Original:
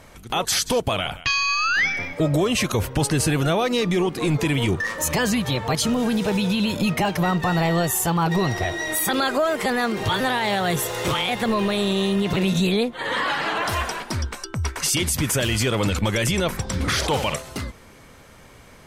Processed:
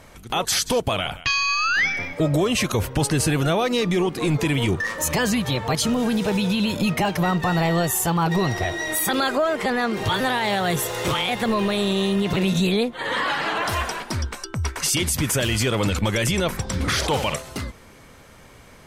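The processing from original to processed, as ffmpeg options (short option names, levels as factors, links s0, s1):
-filter_complex "[0:a]asettb=1/sr,asplit=3[s0][s1][s2];[s0]atrim=end=9.354[s3];[s1]atrim=start=9.35:end=9.93,asetpts=PTS-STARTPTS,afade=t=in:d=0.004:c=qsin,afade=t=out:st=0.576:d=0.004:c=qsin,highshelf=f=7700:g=-10.5[s4];[s2]atrim=start=9.926[s5];[s3][s4]acrossfade=d=0.004:c1=hsin:c2=qsin[s6];[s6][s5]acrossfade=d=0.004:c1=qsin:c2=hsin"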